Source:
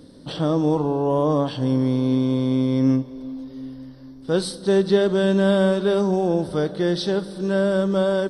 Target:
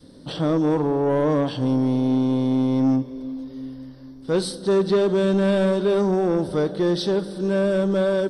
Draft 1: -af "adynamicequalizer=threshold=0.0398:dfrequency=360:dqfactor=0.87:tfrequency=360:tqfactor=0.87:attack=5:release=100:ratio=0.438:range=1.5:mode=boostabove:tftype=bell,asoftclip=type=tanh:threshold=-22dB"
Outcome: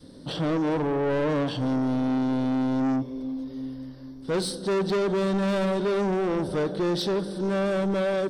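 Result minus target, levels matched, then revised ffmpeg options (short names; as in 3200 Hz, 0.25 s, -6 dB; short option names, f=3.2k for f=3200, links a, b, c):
soft clip: distortion +8 dB
-af "adynamicequalizer=threshold=0.0398:dfrequency=360:dqfactor=0.87:tfrequency=360:tqfactor=0.87:attack=5:release=100:ratio=0.438:range=1.5:mode=boostabove:tftype=bell,asoftclip=type=tanh:threshold=-13.5dB"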